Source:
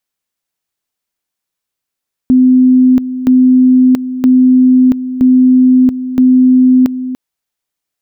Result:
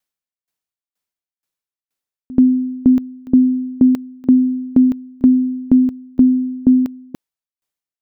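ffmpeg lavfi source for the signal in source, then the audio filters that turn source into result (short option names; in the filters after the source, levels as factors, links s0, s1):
-f lavfi -i "aevalsrc='pow(10,(-3.5-12.5*gte(mod(t,0.97),0.68))/20)*sin(2*PI*255*t)':d=4.85:s=44100"
-af "aeval=exprs='val(0)*pow(10,-26*if(lt(mod(2.1*n/s,1),2*abs(2.1)/1000),1-mod(2.1*n/s,1)/(2*abs(2.1)/1000),(mod(2.1*n/s,1)-2*abs(2.1)/1000)/(1-2*abs(2.1)/1000))/20)':c=same"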